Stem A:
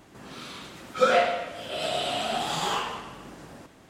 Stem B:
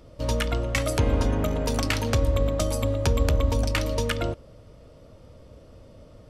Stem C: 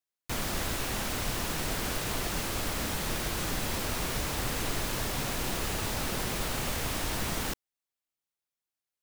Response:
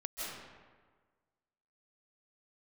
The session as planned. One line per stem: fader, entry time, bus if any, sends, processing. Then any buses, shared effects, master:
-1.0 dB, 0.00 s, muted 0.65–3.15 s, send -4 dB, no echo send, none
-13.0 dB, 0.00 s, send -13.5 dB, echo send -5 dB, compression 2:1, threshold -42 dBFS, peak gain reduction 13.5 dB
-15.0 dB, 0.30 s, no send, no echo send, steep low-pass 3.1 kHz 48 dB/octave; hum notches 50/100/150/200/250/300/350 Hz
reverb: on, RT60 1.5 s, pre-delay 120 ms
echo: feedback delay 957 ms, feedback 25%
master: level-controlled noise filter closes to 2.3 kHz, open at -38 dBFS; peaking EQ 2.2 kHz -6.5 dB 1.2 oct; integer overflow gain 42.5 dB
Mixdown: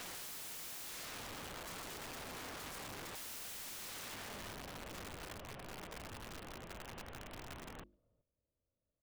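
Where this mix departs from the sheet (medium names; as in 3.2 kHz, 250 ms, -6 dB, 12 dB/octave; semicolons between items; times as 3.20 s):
stem A -1.0 dB -> +5.5 dB; reverb return +10.0 dB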